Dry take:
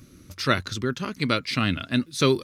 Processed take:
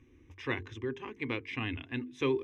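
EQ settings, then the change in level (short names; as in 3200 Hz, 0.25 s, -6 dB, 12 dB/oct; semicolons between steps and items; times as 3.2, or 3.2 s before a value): air absorption 180 m; notches 50/100/150/200/250/300/350/400/450 Hz; fixed phaser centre 910 Hz, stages 8; -5.0 dB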